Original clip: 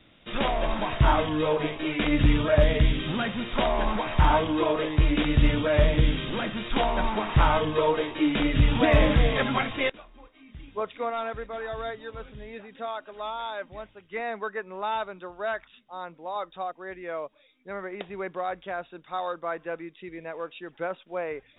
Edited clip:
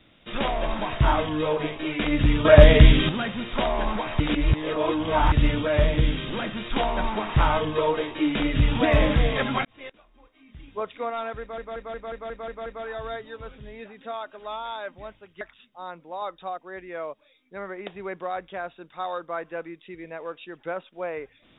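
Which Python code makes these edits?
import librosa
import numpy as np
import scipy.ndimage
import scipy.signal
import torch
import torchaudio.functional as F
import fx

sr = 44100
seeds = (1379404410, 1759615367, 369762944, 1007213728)

y = fx.edit(x, sr, fx.clip_gain(start_s=2.45, length_s=0.64, db=9.0),
    fx.reverse_span(start_s=4.2, length_s=1.12),
    fx.fade_in_span(start_s=9.65, length_s=1.05),
    fx.stutter(start_s=11.4, slice_s=0.18, count=8),
    fx.cut(start_s=14.15, length_s=1.4), tone=tone)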